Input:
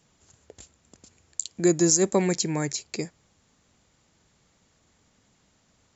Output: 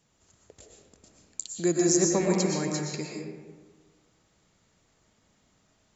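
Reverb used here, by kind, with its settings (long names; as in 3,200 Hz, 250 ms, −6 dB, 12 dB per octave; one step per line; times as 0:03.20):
comb and all-pass reverb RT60 1.4 s, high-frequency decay 0.5×, pre-delay 80 ms, DRR −1 dB
level −5 dB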